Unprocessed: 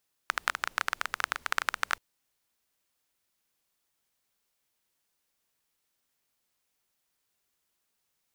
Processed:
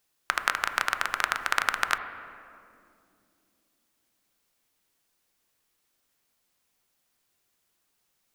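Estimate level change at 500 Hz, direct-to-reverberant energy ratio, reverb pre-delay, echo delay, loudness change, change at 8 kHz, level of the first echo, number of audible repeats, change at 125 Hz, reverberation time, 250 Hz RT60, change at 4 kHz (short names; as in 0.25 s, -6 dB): +5.5 dB, 7.5 dB, 3 ms, none, +4.5 dB, +4.0 dB, none, none, n/a, 2.6 s, 4.3 s, +4.0 dB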